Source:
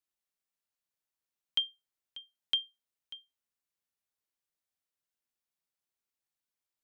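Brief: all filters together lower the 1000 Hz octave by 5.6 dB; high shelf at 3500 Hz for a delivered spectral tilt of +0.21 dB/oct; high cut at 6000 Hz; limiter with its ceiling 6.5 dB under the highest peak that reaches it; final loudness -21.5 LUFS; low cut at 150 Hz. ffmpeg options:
-af "highpass=150,lowpass=6k,equalizer=f=1k:t=o:g=-6.5,highshelf=f=3.5k:g=-8.5,volume=23dB,alimiter=limit=-6.5dB:level=0:latency=1"

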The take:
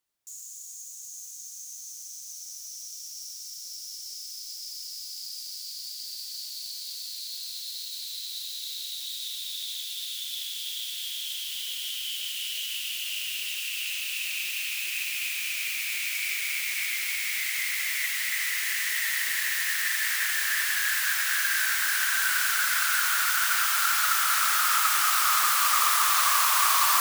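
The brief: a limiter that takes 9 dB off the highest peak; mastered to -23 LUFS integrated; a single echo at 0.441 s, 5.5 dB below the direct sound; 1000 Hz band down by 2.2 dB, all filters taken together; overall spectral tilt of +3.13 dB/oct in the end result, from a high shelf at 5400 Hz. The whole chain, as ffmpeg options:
-af "equalizer=f=1k:t=o:g=-3.5,highshelf=f=5.4k:g=6.5,alimiter=limit=-15.5dB:level=0:latency=1,aecho=1:1:441:0.531,volume=1dB"

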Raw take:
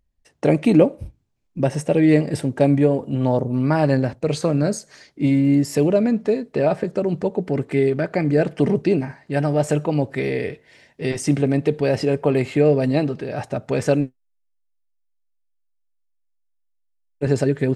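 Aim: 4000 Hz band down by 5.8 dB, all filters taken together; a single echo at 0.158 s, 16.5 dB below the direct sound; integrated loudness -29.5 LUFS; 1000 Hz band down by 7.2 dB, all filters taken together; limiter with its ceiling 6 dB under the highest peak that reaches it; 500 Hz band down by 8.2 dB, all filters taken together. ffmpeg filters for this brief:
-af "equalizer=f=500:t=o:g=-9,equalizer=f=1k:t=o:g=-5.5,equalizer=f=4k:t=o:g=-7.5,alimiter=limit=-13.5dB:level=0:latency=1,aecho=1:1:158:0.15,volume=-4.5dB"

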